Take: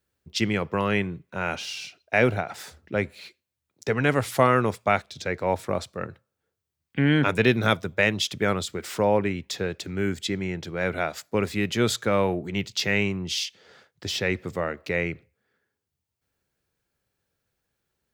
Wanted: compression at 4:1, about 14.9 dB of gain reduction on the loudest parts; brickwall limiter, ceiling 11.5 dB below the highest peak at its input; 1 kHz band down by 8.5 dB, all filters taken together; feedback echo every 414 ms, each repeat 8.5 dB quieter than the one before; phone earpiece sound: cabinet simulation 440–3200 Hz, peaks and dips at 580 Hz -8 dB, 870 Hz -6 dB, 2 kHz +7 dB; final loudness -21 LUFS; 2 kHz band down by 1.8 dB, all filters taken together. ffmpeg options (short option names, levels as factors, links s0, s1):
-af "equalizer=f=1000:t=o:g=-7.5,equalizer=f=2000:t=o:g=-4,acompressor=threshold=0.0178:ratio=4,alimiter=level_in=1.78:limit=0.0631:level=0:latency=1,volume=0.562,highpass=440,equalizer=f=580:t=q:w=4:g=-8,equalizer=f=870:t=q:w=4:g=-6,equalizer=f=2000:t=q:w=4:g=7,lowpass=f=3200:w=0.5412,lowpass=f=3200:w=1.3066,aecho=1:1:414|828|1242|1656:0.376|0.143|0.0543|0.0206,volume=15.8"